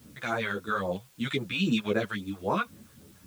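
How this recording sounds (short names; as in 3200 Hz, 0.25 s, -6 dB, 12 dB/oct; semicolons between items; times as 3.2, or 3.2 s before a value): phasing stages 2, 3.7 Hz, lowest notch 230–3200 Hz; a quantiser's noise floor 10-bit, dither triangular; a shimmering, thickened sound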